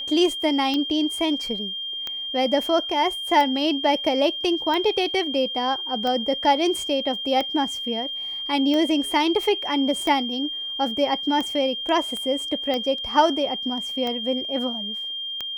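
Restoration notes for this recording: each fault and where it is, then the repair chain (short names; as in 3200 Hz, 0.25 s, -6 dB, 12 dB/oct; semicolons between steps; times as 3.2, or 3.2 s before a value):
tick 45 rpm -14 dBFS
tone 3200 Hz -28 dBFS
12.17 pop -19 dBFS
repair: de-click; notch 3200 Hz, Q 30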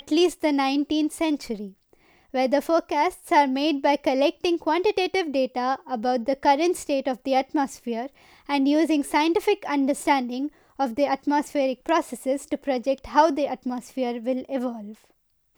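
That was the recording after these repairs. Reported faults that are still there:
none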